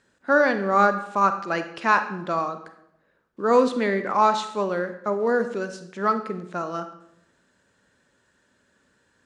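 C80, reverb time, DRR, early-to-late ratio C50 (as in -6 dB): 13.0 dB, 0.80 s, 9.0 dB, 10.5 dB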